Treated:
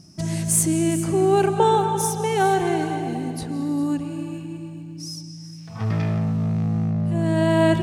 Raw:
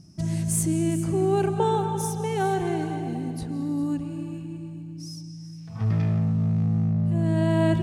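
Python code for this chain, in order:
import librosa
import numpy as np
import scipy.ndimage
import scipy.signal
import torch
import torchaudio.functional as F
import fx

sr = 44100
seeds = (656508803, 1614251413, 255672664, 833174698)

y = fx.low_shelf(x, sr, hz=230.0, db=-10.0)
y = F.gain(torch.from_numpy(y), 7.5).numpy()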